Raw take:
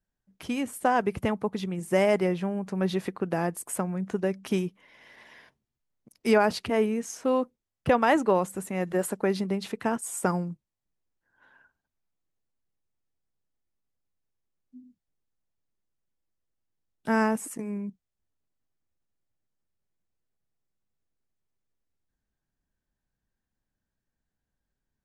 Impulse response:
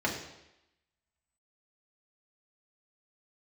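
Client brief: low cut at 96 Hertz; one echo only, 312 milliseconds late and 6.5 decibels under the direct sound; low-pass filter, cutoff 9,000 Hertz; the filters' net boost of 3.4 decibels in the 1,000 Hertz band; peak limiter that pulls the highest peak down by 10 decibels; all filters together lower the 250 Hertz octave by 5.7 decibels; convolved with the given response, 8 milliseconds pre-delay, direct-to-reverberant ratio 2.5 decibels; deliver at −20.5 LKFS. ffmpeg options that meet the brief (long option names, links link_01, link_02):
-filter_complex "[0:a]highpass=96,lowpass=9000,equalizer=frequency=250:width_type=o:gain=-8,equalizer=frequency=1000:width_type=o:gain=5,alimiter=limit=-17dB:level=0:latency=1,aecho=1:1:312:0.473,asplit=2[link_01][link_02];[1:a]atrim=start_sample=2205,adelay=8[link_03];[link_02][link_03]afir=irnorm=-1:irlink=0,volume=-12dB[link_04];[link_01][link_04]amix=inputs=2:normalize=0,volume=7.5dB"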